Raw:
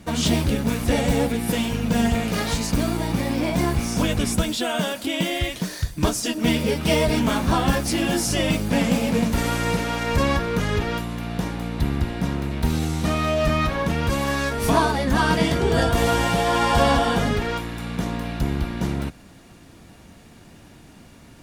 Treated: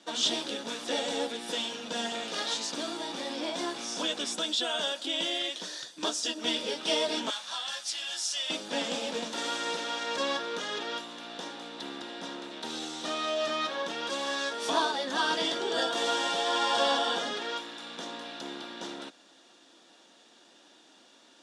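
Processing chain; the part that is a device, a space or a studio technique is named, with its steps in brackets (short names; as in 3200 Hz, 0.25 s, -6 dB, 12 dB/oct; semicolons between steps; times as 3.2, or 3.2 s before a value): 7.3–8.5 passive tone stack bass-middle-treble 10-0-10; phone speaker on a table (speaker cabinet 340–8200 Hz, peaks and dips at 420 Hz -6 dB, 690 Hz -3 dB, 1100 Hz -3 dB, 2200 Hz -8 dB, 3500 Hz +9 dB, 5500 Hz +3 dB); gain -5.5 dB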